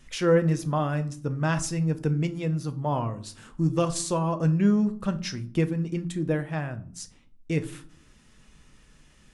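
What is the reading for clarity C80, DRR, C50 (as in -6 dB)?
20.5 dB, 8.5 dB, 16.5 dB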